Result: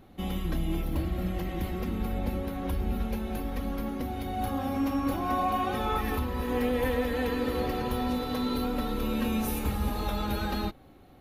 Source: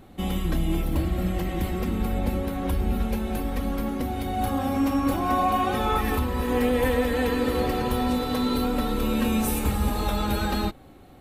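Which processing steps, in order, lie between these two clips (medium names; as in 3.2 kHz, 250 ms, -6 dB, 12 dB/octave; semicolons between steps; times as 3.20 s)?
peaking EQ 8.1 kHz -13 dB 0.21 oct; trim -5 dB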